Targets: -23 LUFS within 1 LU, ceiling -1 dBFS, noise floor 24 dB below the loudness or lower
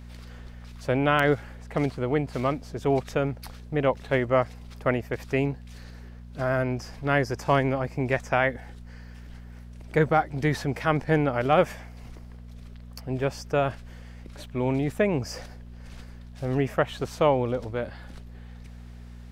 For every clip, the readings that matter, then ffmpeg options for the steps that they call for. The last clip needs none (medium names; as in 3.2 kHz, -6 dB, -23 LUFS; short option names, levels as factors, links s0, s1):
hum 60 Hz; highest harmonic 240 Hz; hum level -41 dBFS; loudness -26.5 LUFS; peak level -8.5 dBFS; loudness target -23.0 LUFS
-> -af "bandreject=f=60:t=h:w=4,bandreject=f=120:t=h:w=4,bandreject=f=180:t=h:w=4,bandreject=f=240:t=h:w=4"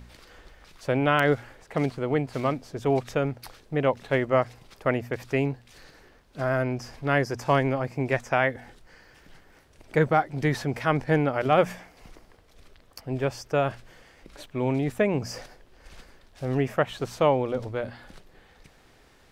hum not found; loudness -26.5 LUFS; peak level -8.5 dBFS; loudness target -23.0 LUFS
-> -af "volume=1.5"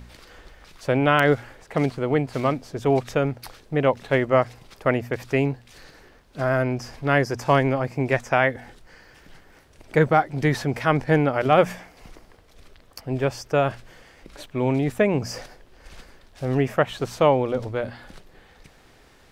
loudness -23.0 LUFS; peak level -5.0 dBFS; noise floor -54 dBFS